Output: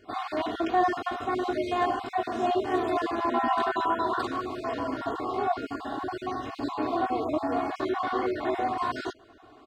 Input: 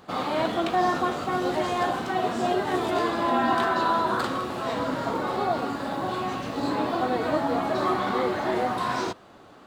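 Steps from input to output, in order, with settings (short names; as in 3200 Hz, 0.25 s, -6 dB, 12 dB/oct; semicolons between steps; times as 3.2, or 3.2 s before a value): random spectral dropouts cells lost 27%; LPF 4000 Hz 6 dB/oct; comb 2.8 ms, depth 90%; gain -5 dB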